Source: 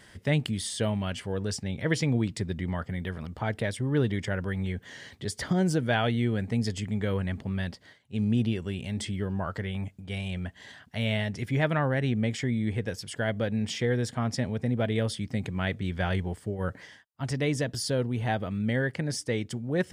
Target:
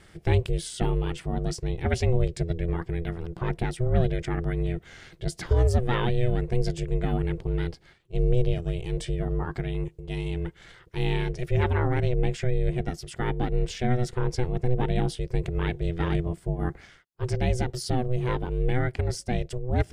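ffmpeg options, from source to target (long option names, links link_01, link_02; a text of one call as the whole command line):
ffmpeg -i in.wav -af "aeval=exprs='val(0)*sin(2*PI*250*n/s)':channel_layout=same,lowshelf=frequency=190:gain=12" out.wav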